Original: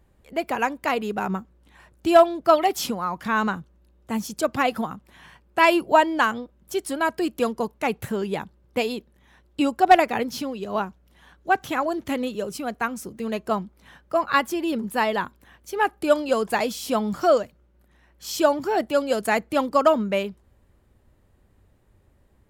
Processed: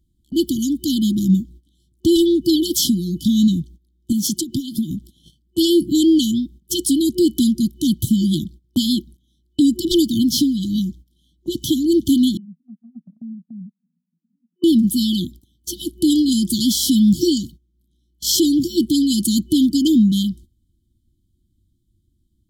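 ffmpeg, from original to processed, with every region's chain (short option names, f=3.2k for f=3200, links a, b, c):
-filter_complex "[0:a]asettb=1/sr,asplit=3[a][b][c];[a]atrim=end=4.124[d];[b]atrim=start=4.12:end=4.91,asetpts=PTS-STARTPTS,afade=t=in:d=0.004:c=qsin,afade=t=out:st=0.786:d=0.004:c=qsin,highpass=110,acompressor=threshold=-29dB:ratio=16:attack=3.2:release=140:knee=1:detection=peak[e];[c]atrim=start=4.906[f];[d][e]acrossfade=d=0.004:c1=hsin:c2=qsin[g];[g][f]acrossfade=d=0.004:c1=qsin:c2=hsin,asettb=1/sr,asplit=3[h][i][j];[h]atrim=end=12.374[k];[i]atrim=start=12.37:end=14.64,asetpts=PTS-STARTPTS,afade=t=in:d=0.004:c=qsin,afade=t=out:st=2.266:d=0.004:c=qsin,acompressor=threshold=-49dB:ratio=2:attack=3.2:release=140:knee=1:detection=peak,aeval=exprs='(tanh(70.8*val(0)+0.65)-tanh(0.65))/70.8':c=same,asuperpass=centerf=200:order=12:qfactor=2.2[l];[j]atrim=start=14.636[m];[k][l]acrossfade=d=0.004:c1=hsin:c2=qsin[n];[n][m]acrossfade=d=0.004:c1=qsin:c2=hsin,afftfilt=real='re*(1-between(b*sr/4096,360,3000))':imag='im*(1-between(b*sr/4096,360,3000))':win_size=4096:overlap=0.75,agate=range=-19dB:threshold=-51dB:ratio=16:detection=peak,alimiter=level_in=21dB:limit=-1dB:release=50:level=0:latency=1,volume=-6.5dB"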